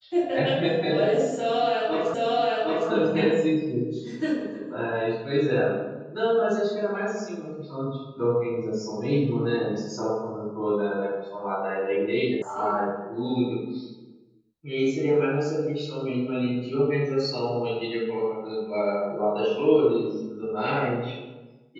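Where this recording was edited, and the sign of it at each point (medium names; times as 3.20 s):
2.14 s: repeat of the last 0.76 s
12.42 s: sound stops dead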